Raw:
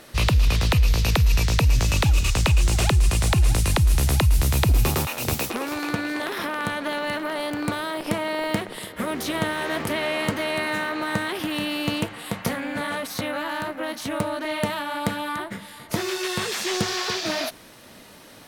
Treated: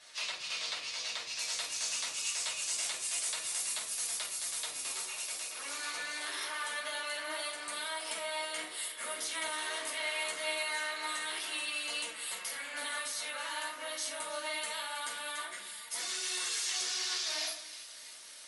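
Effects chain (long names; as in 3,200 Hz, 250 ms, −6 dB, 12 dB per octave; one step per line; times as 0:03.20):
first difference
downward compressor 3 to 1, threshold −36 dBFS, peak gain reduction 10 dB
high-pass filter 310 Hz 12 dB per octave
rectangular room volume 330 cubic metres, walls furnished, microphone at 5.5 metres
wave folding −15.5 dBFS
flanger 0.25 Hz, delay 4 ms, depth 7.5 ms, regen +60%
low-pass filter 5,700 Hz 12 dB per octave, from 0:01.39 12,000 Hz
echo with a time of its own for lows and highs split 1,600 Hz, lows 140 ms, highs 320 ms, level −14 dB
surface crackle 89 per second −48 dBFS
mains-hum notches 60/120/180/240/300/360/420/480 Hz
AC-3 64 kbit/s 48,000 Hz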